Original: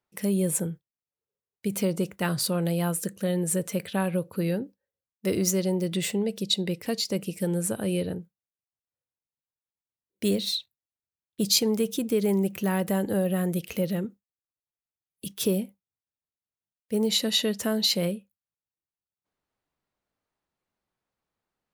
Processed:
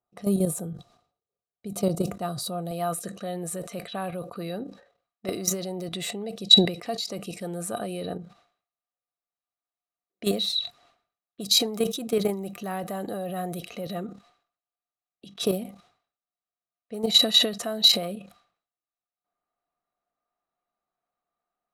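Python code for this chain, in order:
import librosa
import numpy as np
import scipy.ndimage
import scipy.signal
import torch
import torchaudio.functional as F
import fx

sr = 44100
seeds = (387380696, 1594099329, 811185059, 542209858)

y = fx.env_lowpass(x, sr, base_hz=2700.0, full_db=-23.5)
y = fx.peak_eq(y, sr, hz=fx.steps((0.0, 2000.0), (2.71, 81.0)), db=-10.5, octaves=1.5)
y = fx.level_steps(y, sr, step_db=12)
y = fx.small_body(y, sr, hz=(710.0, 1200.0, 3900.0), ring_ms=55, db=17)
y = fx.sustainer(y, sr, db_per_s=120.0)
y = y * librosa.db_to_amplitude(2.5)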